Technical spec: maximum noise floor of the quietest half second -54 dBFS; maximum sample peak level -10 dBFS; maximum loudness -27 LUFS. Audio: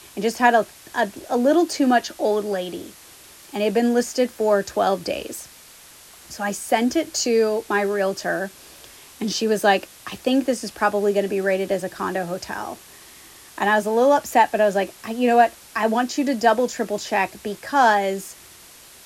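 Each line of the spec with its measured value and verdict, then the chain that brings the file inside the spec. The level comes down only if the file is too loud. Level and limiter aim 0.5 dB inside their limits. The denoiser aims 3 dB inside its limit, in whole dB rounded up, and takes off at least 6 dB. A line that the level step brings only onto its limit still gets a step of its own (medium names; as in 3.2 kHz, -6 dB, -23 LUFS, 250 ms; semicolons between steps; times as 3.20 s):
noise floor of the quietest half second -46 dBFS: fail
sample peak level -2.0 dBFS: fail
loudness -21.5 LUFS: fail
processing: noise reduction 6 dB, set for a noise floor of -46 dBFS; trim -6 dB; peak limiter -10.5 dBFS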